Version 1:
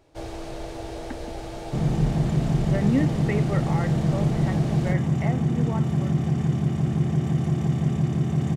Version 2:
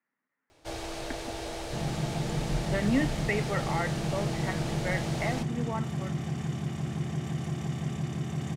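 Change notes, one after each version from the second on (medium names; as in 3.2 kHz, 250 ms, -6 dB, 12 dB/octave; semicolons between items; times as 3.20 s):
first sound: entry +0.50 s; second sound -5.0 dB; master: add tilt shelf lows -5 dB, about 900 Hz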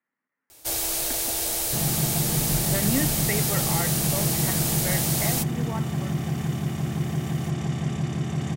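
first sound: remove tape spacing loss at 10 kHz 26 dB; second sound +5.5 dB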